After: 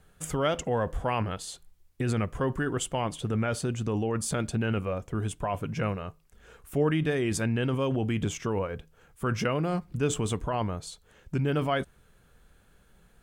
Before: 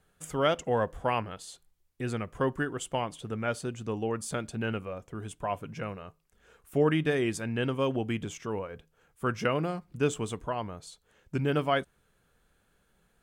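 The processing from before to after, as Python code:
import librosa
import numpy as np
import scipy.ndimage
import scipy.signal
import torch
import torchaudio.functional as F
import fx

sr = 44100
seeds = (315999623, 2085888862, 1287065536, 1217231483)

p1 = fx.over_compress(x, sr, threshold_db=-34.0, ratio=-0.5)
p2 = x + (p1 * 10.0 ** (-1.5 / 20.0))
p3 = fx.low_shelf(p2, sr, hz=130.0, db=7.0)
y = p3 * 10.0 ** (-2.0 / 20.0)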